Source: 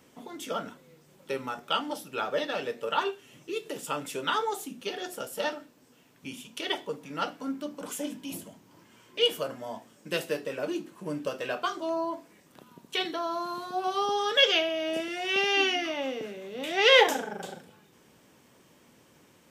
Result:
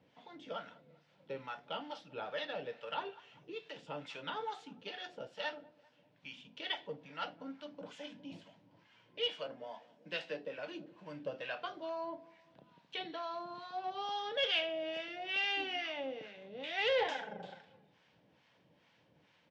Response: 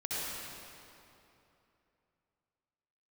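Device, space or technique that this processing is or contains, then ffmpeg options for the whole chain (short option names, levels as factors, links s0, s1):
guitar amplifier with harmonic tremolo: -filter_complex "[0:a]asettb=1/sr,asplit=3[s0][s1][s2];[s0]atrim=end=9.284[s3];[s1]atrim=start=9.28:end=10.58,asetpts=PTS-STARTPTS,afade=t=in:d=0.004:c=qsin,afade=t=out:st=1.296:d=0.004:c=qsin,highpass=f=160:w=0.5412,highpass=f=160:w=1.3066[s4];[s2]atrim=start=10.576[s5];[s3][s4]acrossfade=d=0.004:c1=hsin:c2=qsin[s6];[s6][s5]acrossfade=d=0.004:c1=qsin:c2=hsin,asplit=2[s7][s8];[s8]adelay=197,lowpass=f=1900:p=1,volume=0.0891,asplit=2[s9][s10];[s10]adelay=197,lowpass=f=1900:p=1,volume=0.49,asplit=2[s11][s12];[s12]adelay=197,lowpass=f=1900:p=1,volume=0.49,asplit=2[s13][s14];[s14]adelay=197,lowpass=f=1900:p=1,volume=0.49[s15];[s7][s9][s11][s13][s15]amix=inputs=5:normalize=0,acrossover=split=780[s16][s17];[s16]aeval=exprs='val(0)*(1-0.7/2+0.7/2*cos(2*PI*2.3*n/s))':c=same[s18];[s17]aeval=exprs='val(0)*(1-0.7/2-0.7/2*cos(2*PI*2.3*n/s))':c=same[s19];[s18][s19]amix=inputs=2:normalize=0,asoftclip=type=tanh:threshold=0.0891,highpass=86,equalizer=f=240:t=q:w=4:g=-8,equalizer=f=380:t=q:w=4:g=-10,equalizer=f=1200:t=q:w=4:g=-7,lowpass=f=4300:w=0.5412,lowpass=f=4300:w=1.3066,volume=0.668"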